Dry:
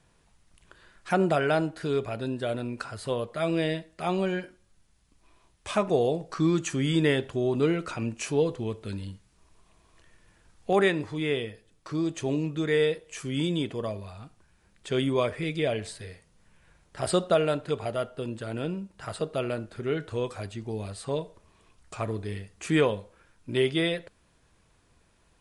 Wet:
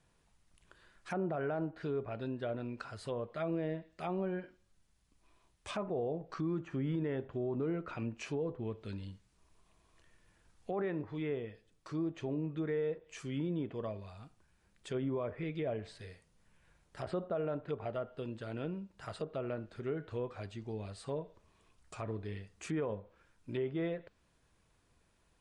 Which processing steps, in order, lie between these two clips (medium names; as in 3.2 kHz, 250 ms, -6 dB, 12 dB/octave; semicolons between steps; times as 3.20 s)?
low-pass that closes with the level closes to 1.3 kHz, closed at -24.5 dBFS; peak limiter -20 dBFS, peak gain reduction 7.5 dB; trim -7.5 dB